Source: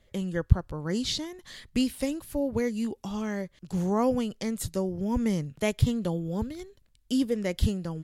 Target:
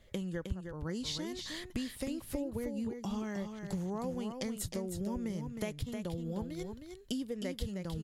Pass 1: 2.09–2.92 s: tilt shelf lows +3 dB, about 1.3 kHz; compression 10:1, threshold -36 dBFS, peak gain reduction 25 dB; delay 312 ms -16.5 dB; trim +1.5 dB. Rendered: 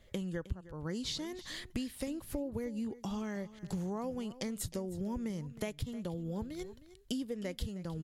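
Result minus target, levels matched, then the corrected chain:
echo-to-direct -10 dB
2.09–2.92 s: tilt shelf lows +3 dB, about 1.3 kHz; compression 10:1, threshold -36 dBFS, peak gain reduction 25 dB; delay 312 ms -6.5 dB; trim +1.5 dB

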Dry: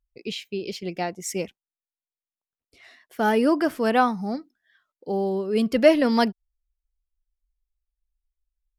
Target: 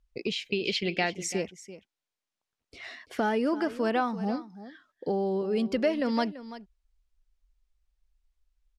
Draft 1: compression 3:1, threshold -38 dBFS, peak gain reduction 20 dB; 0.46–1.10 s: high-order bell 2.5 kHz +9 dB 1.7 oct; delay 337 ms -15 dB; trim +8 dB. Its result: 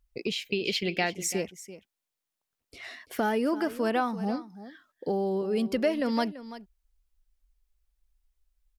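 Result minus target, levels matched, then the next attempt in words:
8 kHz band +3.5 dB
compression 3:1, threshold -38 dBFS, peak gain reduction 20 dB; low-pass 6.8 kHz 12 dB/octave; 0.46–1.10 s: high-order bell 2.5 kHz +9 dB 1.7 oct; delay 337 ms -15 dB; trim +8 dB

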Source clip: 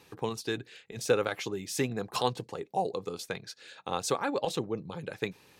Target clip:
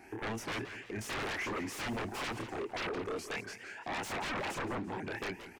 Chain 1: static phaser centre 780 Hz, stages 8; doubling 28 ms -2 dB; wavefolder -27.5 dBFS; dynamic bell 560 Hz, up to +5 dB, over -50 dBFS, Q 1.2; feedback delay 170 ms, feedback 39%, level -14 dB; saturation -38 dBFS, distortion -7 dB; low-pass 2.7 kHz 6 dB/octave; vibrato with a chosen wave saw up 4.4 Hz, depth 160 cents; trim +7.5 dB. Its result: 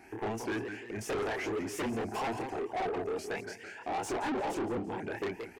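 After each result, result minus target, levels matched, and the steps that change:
wavefolder: distortion -16 dB; 2 kHz band -4.0 dB
change: wavefolder -37 dBFS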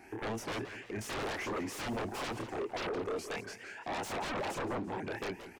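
2 kHz band -2.5 dB
change: dynamic bell 2.1 kHz, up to +5 dB, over -50 dBFS, Q 1.2

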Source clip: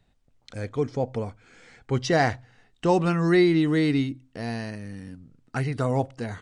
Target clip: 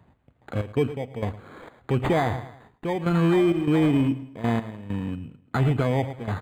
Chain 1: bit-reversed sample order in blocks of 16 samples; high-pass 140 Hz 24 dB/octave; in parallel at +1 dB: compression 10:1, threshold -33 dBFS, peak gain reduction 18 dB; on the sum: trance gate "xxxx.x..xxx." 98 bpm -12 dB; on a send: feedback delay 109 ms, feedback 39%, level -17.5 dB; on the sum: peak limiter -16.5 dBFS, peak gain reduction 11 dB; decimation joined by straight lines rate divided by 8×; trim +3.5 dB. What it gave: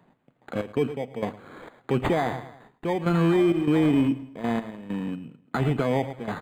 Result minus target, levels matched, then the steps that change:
125 Hz band -3.0 dB
change: high-pass 57 Hz 24 dB/octave

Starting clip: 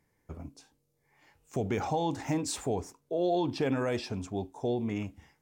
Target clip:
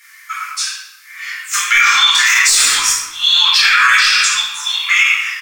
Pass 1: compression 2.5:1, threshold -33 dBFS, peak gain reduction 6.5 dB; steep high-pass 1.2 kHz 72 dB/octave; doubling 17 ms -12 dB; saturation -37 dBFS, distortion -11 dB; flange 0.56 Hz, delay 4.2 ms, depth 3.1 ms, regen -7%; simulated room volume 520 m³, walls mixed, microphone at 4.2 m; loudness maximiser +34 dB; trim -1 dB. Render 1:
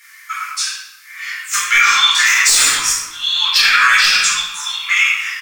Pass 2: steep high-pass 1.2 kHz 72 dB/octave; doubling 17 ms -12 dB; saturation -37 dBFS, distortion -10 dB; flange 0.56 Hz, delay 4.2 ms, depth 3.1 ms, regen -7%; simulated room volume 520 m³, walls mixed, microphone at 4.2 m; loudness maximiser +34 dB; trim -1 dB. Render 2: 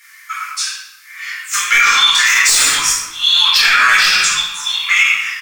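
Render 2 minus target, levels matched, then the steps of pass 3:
saturation: distortion +8 dB
steep high-pass 1.2 kHz 72 dB/octave; doubling 17 ms -12 dB; saturation -29.5 dBFS, distortion -18 dB; flange 0.56 Hz, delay 4.2 ms, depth 3.1 ms, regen -7%; simulated room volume 520 m³, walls mixed, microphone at 4.2 m; loudness maximiser +34 dB; trim -1 dB

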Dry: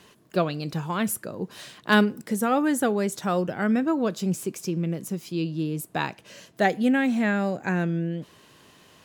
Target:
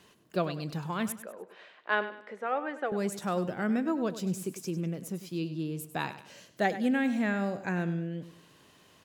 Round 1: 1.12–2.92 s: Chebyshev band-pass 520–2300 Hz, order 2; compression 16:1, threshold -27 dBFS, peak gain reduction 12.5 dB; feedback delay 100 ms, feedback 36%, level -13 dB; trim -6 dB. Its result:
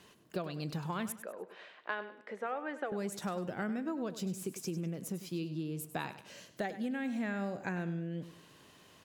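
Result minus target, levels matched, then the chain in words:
compression: peak gain reduction +12.5 dB
1.12–2.92 s: Chebyshev band-pass 520–2300 Hz, order 2; feedback delay 100 ms, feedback 36%, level -13 dB; trim -6 dB

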